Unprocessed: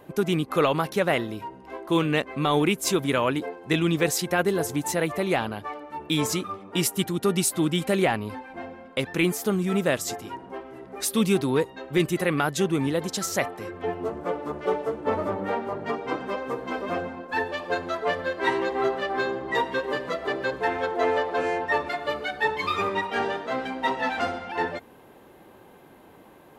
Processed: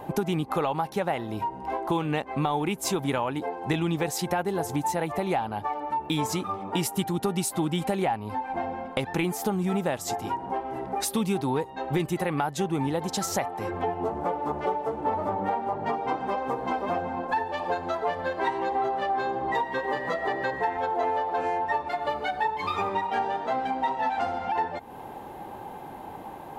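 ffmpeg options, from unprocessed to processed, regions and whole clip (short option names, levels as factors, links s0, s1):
-filter_complex "[0:a]asettb=1/sr,asplit=3[s0][s1][s2];[s0]atrim=end=19.634[s3];[s1]atrim=start=19.63:end=20.77,asetpts=PTS-STARTPTS,afade=t=in:d=0.004:c=qsin,afade=t=out:st=1.136:d=0.004:c=qsin,highpass=60,aeval=exprs='val(0)+0.0251*sin(2*PI*1900*n/s)':c=same[s4];[s2]atrim=start=20.766[s5];[s3][s4]acrossfade=d=0.004:c1=hsin:c2=qsin[s6];[s6][s5]acrossfade=d=0.004:c1=qsin:c2=hsin,equalizer=f=830:t=o:w=0.44:g=15,acompressor=threshold=0.0251:ratio=4,lowshelf=f=220:g=6,volume=1.68"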